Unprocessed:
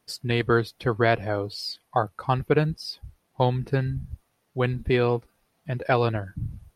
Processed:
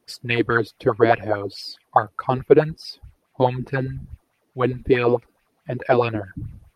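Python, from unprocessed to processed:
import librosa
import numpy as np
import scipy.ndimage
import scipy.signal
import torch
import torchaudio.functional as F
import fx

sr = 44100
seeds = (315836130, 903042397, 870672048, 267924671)

y = fx.bell_lfo(x, sr, hz=4.7, low_hz=270.0, high_hz=2600.0, db=15)
y = y * 10.0 ** (-2.0 / 20.0)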